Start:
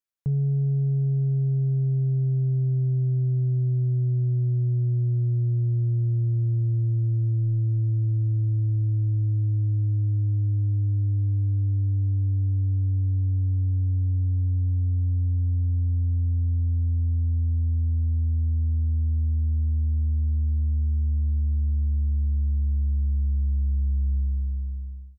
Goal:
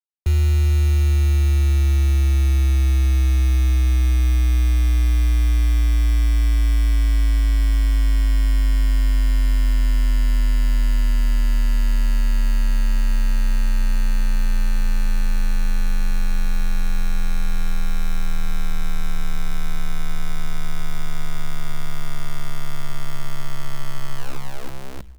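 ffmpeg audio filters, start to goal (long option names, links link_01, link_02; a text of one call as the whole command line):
ffmpeg -i in.wav -af "acrusher=bits=7:dc=4:mix=0:aa=0.000001,afreqshift=-62,volume=7dB" out.wav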